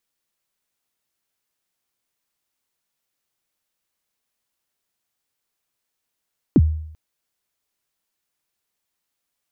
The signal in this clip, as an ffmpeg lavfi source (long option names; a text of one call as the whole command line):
ffmpeg -f lavfi -i "aevalsrc='0.447*pow(10,-3*t/0.7)*sin(2*PI*(360*0.044/log(78/360)*(exp(log(78/360)*min(t,0.044)/0.044)-1)+78*max(t-0.044,0)))':duration=0.39:sample_rate=44100" out.wav